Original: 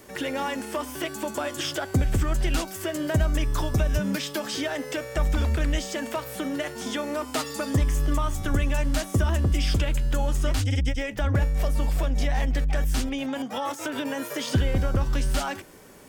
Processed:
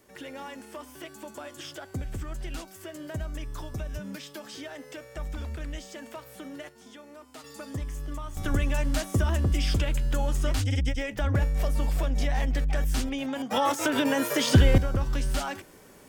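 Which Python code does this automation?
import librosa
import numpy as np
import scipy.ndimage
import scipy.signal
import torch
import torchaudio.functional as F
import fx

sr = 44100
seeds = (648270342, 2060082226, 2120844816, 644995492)

y = fx.gain(x, sr, db=fx.steps((0.0, -11.5), (6.69, -18.5), (7.44, -11.5), (8.37, -2.0), (13.51, 5.0), (14.78, -3.0)))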